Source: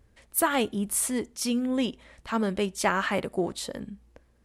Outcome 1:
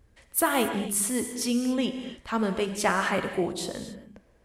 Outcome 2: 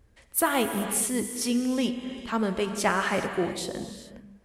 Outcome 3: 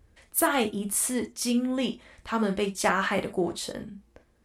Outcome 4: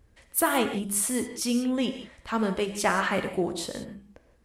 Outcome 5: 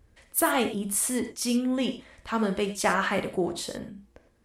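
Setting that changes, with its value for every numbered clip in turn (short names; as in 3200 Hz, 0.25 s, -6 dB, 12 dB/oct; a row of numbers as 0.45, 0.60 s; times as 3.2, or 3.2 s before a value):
non-linear reverb, gate: 300, 460, 80, 200, 130 ms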